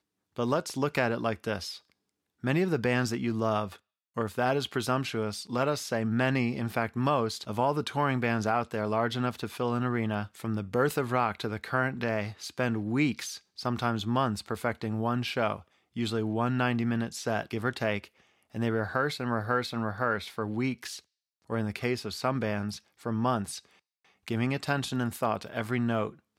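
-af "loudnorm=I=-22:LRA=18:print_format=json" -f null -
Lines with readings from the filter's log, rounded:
"input_i" : "-30.4",
"input_tp" : "-11.7",
"input_lra" : "3.1",
"input_thresh" : "-40.7",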